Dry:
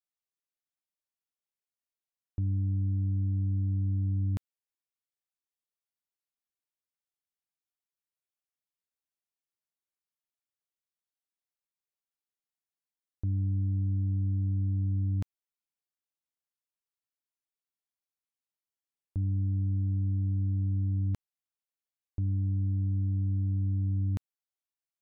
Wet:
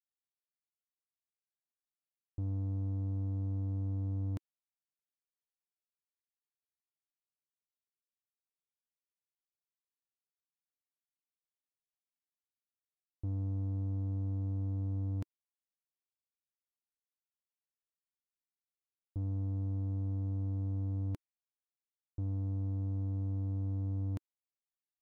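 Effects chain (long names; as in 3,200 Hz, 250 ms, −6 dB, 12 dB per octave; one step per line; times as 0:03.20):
low-pass that shuts in the quiet parts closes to 470 Hz
dynamic equaliser 320 Hz, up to +6 dB, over −55 dBFS, Q 2.7
leveller curve on the samples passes 1
level −7.5 dB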